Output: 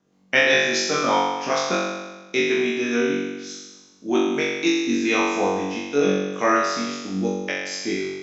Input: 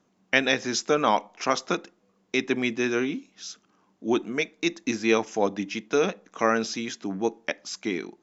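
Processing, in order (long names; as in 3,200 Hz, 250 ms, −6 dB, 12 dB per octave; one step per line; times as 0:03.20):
rotating-speaker cabinet horn 5 Hz, later 0.85 Hz, at 0:04.15
flutter between parallel walls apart 3.6 metres, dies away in 1.2 s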